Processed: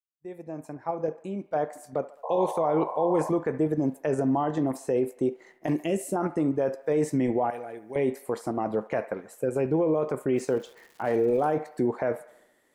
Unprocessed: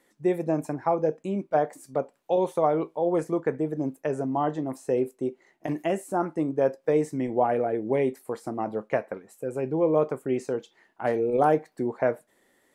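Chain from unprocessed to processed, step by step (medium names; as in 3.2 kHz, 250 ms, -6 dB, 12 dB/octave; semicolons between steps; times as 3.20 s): fade-in on the opening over 3.26 s; 7.50–7.96 s: pre-emphasis filter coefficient 0.9; expander -59 dBFS; 5.75–6.16 s: high-order bell 1.1 kHz -12.5 dB; in parallel at +1.5 dB: level held to a coarse grid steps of 16 dB; on the sum: peak limiter -18 dBFS, peak gain reduction 9.5 dB; 2.23–3.30 s: painted sound noise 460–1100 Hz -34 dBFS; 10.36–11.48 s: crackle 340 per s -45 dBFS; on a send: feedback echo behind a band-pass 71 ms, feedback 55%, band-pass 1.3 kHz, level -14 dB; on the sum: trim +1 dB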